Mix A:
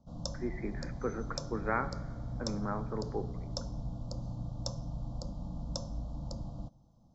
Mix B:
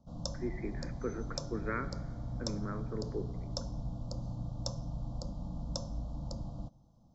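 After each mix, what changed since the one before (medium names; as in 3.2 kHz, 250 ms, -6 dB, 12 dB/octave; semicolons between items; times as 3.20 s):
speech: add static phaser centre 320 Hz, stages 4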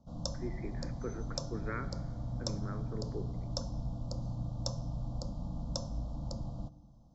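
speech -3.5 dB; background: send on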